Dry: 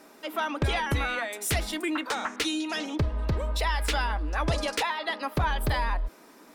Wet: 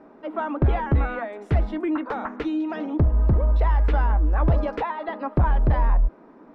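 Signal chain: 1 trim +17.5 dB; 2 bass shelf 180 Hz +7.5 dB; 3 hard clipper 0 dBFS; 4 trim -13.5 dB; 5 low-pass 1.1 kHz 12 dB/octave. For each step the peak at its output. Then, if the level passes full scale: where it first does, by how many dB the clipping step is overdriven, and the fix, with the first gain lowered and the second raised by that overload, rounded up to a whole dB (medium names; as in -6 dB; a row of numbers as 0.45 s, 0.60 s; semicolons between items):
-1.0 dBFS, +5.5 dBFS, 0.0 dBFS, -13.5 dBFS, -13.0 dBFS; step 2, 5.5 dB; step 1 +11.5 dB, step 4 -7.5 dB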